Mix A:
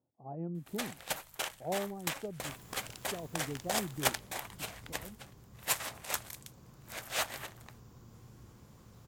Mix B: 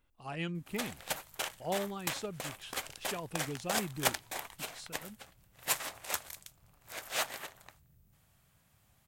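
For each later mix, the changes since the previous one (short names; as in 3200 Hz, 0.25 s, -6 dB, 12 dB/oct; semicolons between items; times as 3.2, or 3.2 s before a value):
speech: remove Chebyshev band-pass 120–770 Hz, order 3; second sound: muted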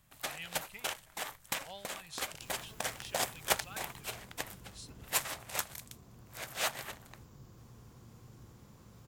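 speech: add passive tone stack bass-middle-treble 10-0-10; first sound: entry -0.55 s; second sound: unmuted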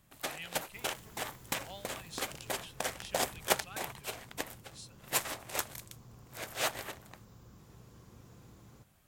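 first sound: add bell 330 Hz +6.5 dB 1.6 oct; second sound: entry -1.65 s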